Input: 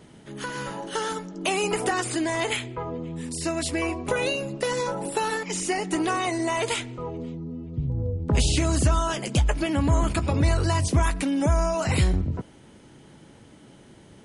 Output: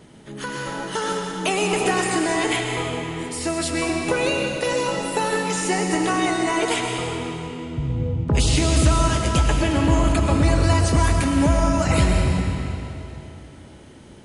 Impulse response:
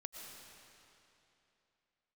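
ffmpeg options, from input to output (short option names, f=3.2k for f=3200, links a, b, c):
-filter_complex "[1:a]atrim=start_sample=2205,asetrate=43659,aresample=44100[a];[0:a][a]afir=irnorm=-1:irlink=0,volume=8dB"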